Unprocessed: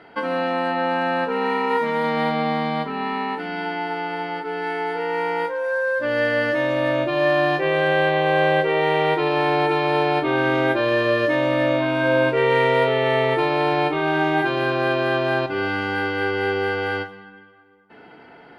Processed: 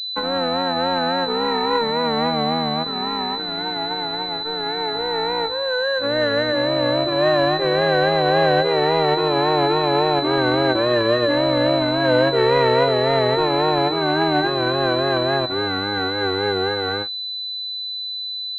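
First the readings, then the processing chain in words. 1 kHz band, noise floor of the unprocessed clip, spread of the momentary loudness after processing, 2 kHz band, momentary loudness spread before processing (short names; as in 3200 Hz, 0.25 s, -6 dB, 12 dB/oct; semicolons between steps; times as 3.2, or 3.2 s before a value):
+1.0 dB, -46 dBFS, 7 LU, -2.5 dB, 8 LU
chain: vibrato 3.6 Hz 80 cents; crossover distortion -34 dBFS; pulse-width modulation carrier 4000 Hz; gain +3 dB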